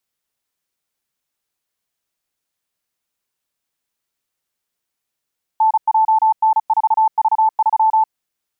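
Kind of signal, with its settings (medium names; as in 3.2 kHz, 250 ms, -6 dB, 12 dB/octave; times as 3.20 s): Morse "NJN4V3" 35 wpm 878 Hz -10 dBFS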